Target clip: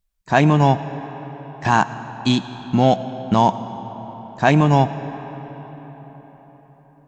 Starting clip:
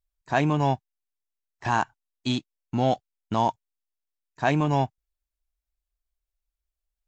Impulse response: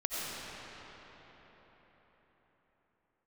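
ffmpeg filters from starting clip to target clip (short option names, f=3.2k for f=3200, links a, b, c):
-filter_complex "[0:a]equalizer=f=190:t=o:w=0.29:g=10.5,asplit=2[a][b];[1:a]atrim=start_sample=2205[c];[b][c]afir=irnorm=-1:irlink=0,volume=-17dB[d];[a][d]amix=inputs=2:normalize=0,volume=6.5dB"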